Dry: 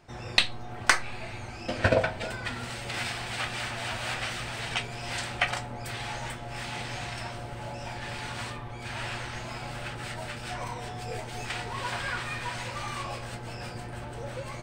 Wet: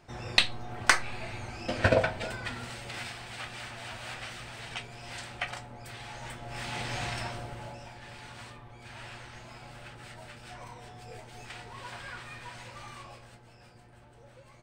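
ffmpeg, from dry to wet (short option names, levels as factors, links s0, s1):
-af "volume=2.99,afade=t=out:st=2.03:d=1.14:silence=0.421697,afade=t=in:st=6.13:d=0.94:silence=0.316228,afade=t=out:st=7.07:d=0.84:silence=0.251189,afade=t=out:st=12.85:d=0.65:silence=0.446684"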